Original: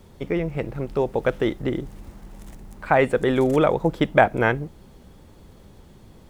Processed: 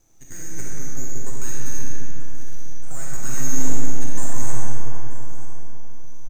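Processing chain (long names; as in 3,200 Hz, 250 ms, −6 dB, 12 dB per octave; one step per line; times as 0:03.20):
band-splitting scrambler in four parts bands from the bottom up 3412
high-pass filter 330 Hz
high-shelf EQ 5,000 Hz +8 dB
brickwall limiter −9 dBFS, peak gain reduction 11 dB
rotating-speaker cabinet horn 1.1 Hz
full-wave rectification
single-tap delay 931 ms −17 dB
convolution reverb RT60 3.8 s, pre-delay 4 ms, DRR −6 dB
level −10 dB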